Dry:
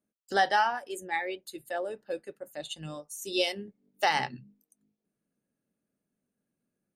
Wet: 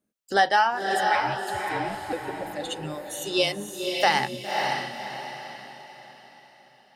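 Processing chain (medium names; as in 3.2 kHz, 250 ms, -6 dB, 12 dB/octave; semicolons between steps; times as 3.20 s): 1.15–2.13 s: ring modulator 240 Hz; echo that smears into a reverb 557 ms, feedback 41%, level -3.5 dB; trim +4.5 dB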